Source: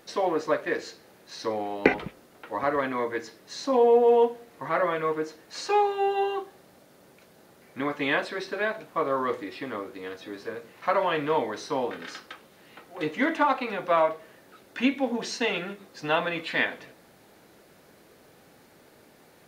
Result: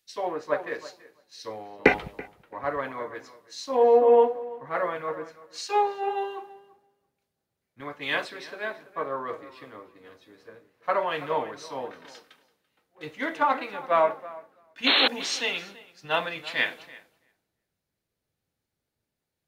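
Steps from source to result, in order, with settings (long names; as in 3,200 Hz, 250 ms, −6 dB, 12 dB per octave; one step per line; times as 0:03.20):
dynamic equaliser 250 Hz, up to −5 dB, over −38 dBFS, Q 0.97
sound drawn into the spectrogram noise, 0:14.86–0:15.08, 280–4,300 Hz −23 dBFS
tape delay 335 ms, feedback 32%, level −9.5 dB, low-pass 2,600 Hz
multiband upward and downward expander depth 100%
level −3.5 dB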